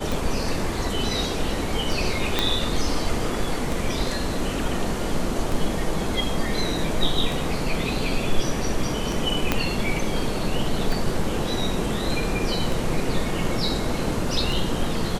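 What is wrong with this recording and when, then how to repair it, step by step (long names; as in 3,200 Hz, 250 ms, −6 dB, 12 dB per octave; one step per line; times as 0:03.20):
scratch tick 33 1/3 rpm
0:02.39: click −5 dBFS
0:09.52: click −5 dBFS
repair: click removal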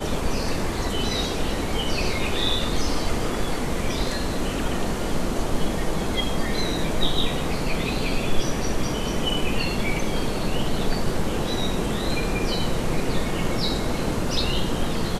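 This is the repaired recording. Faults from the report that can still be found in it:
0:02.39: click
0:09.52: click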